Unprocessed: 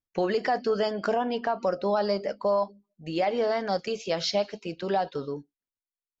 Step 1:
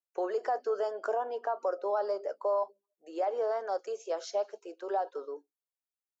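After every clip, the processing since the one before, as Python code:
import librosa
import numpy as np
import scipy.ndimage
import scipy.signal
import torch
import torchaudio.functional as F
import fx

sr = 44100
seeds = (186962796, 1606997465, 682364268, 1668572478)

y = scipy.signal.sosfilt(scipy.signal.butter(6, 370.0, 'highpass', fs=sr, output='sos'), x)
y = fx.band_shelf(y, sr, hz=3100.0, db=-14.0, octaves=1.7)
y = y * librosa.db_to_amplitude(-4.5)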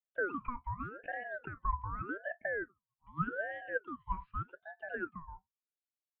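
y = fx.formant_cascade(x, sr, vowel='e')
y = fx.ring_lfo(y, sr, carrier_hz=840.0, swing_pct=45, hz=0.84)
y = y * librosa.db_to_amplitude(4.5)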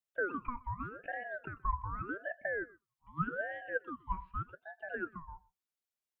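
y = x + 10.0 ** (-22.5 / 20.0) * np.pad(x, (int(125 * sr / 1000.0), 0))[:len(x)]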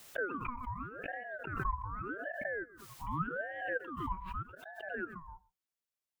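y = fx.pre_swell(x, sr, db_per_s=53.0)
y = y * librosa.db_to_amplitude(-2.0)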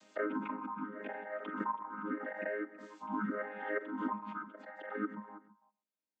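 y = fx.chord_vocoder(x, sr, chord='major triad', root=56)
y = fx.echo_multitap(y, sr, ms=(43, 327), db=(-17.0, -18.5))
y = y * librosa.db_to_amplitude(1.5)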